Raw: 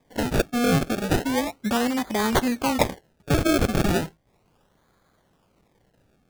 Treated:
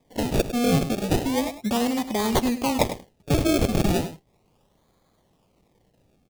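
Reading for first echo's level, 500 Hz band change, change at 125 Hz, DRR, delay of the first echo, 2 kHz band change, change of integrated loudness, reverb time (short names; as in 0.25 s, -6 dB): -12.0 dB, 0.0 dB, +0.5 dB, none, 0.102 s, -4.5 dB, -0.5 dB, none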